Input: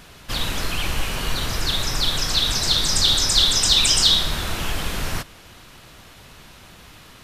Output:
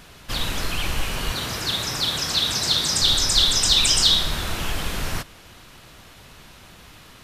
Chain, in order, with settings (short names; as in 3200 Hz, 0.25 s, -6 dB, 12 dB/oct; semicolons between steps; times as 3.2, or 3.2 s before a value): 1.31–3.02 HPF 94 Hz 12 dB/oct; gain -1 dB